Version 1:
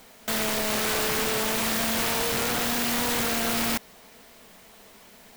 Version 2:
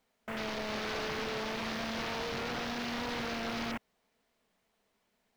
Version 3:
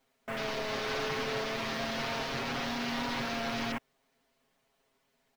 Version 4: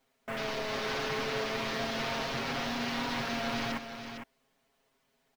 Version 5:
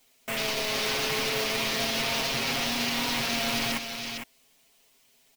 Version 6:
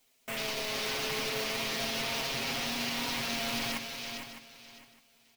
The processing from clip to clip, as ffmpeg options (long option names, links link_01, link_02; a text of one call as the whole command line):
ffmpeg -i in.wav -af "afwtdn=0.0224,highshelf=frequency=7800:gain=-8.5,volume=-8dB" out.wav
ffmpeg -i in.wav -af "aecho=1:1:7.4:0.87" out.wav
ffmpeg -i in.wav -af "aecho=1:1:455:0.376" out.wav
ffmpeg -i in.wav -filter_complex "[0:a]acrossover=split=1900[link_01][link_02];[link_01]acrusher=bits=5:mode=log:mix=0:aa=0.000001[link_03];[link_02]alimiter=level_in=10.5dB:limit=-24dB:level=0:latency=1,volume=-10.5dB[link_04];[link_03][link_04]amix=inputs=2:normalize=0,aexciter=amount=3.9:drive=3.4:freq=2200,volume=2.5dB" out.wav
ffmpeg -i in.wav -af "aecho=1:1:609|1218:0.237|0.0474,volume=-5.5dB" out.wav